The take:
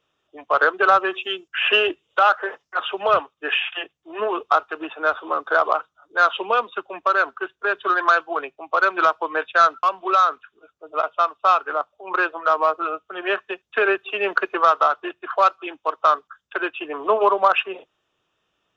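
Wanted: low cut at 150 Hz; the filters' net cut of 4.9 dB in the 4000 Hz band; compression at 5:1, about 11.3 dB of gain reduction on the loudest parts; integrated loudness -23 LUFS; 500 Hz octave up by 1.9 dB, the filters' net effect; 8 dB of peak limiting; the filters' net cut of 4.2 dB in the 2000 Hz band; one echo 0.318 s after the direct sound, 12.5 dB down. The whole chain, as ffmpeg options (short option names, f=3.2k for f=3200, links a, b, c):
-af "highpass=150,equalizer=f=500:t=o:g=3,equalizer=f=2k:t=o:g=-6,equalizer=f=4k:t=o:g=-4,acompressor=threshold=-25dB:ratio=5,alimiter=limit=-19.5dB:level=0:latency=1,aecho=1:1:318:0.237,volume=8dB"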